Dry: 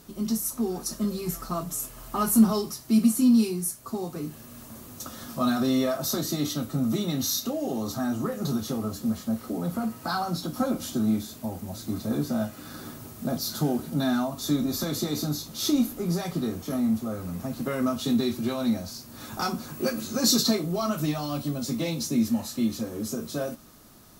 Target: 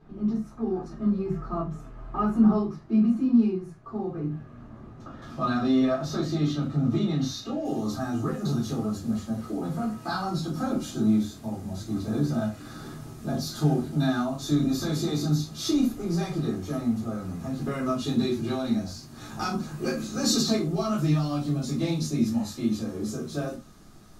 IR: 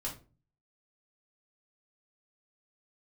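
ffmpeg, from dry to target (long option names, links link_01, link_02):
-filter_complex "[0:a]asetnsamples=nb_out_samples=441:pad=0,asendcmd='5.22 lowpass f 3900;7.65 lowpass f 9000',lowpass=1700[link_01];[1:a]atrim=start_sample=2205,atrim=end_sample=6615,asetrate=57330,aresample=44100[link_02];[link_01][link_02]afir=irnorm=-1:irlink=0"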